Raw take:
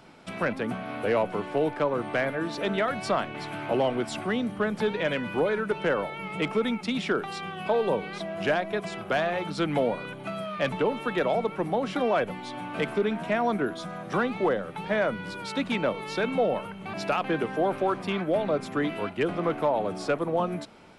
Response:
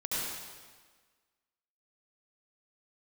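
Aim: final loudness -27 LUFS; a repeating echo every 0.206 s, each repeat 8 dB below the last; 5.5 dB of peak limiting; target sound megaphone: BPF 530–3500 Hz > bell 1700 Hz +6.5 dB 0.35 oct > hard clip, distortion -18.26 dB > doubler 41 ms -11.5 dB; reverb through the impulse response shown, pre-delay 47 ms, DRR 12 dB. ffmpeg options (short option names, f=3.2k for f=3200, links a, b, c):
-filter_complex "[0:a]alimiter=limit=-19.5dB:level=0:latency=1,aecho=1:1:206|412|618|824|1030:0.398|0.159|0.0637|0.0255|0.0102,asplit=2[a][b];[1:a]atrim=start_sample=2205,adelay=47[c];[b][c]afir=irnorm=-1:irlink=0,volume=-18dB[d];[a][d]amix=inputs=2:normalize=0,highpass=530,lowpass=3.5k,equalizer=f=1.7k:t=o:w=0.35:g=6.5,asoftclip=type=hard:threshold=-24dB,asplit=2[e][f];[f]adelay=41,volume=-11.5dB[g];[e][g]amix=inputs=2:normalize=0,volume=4.5dB"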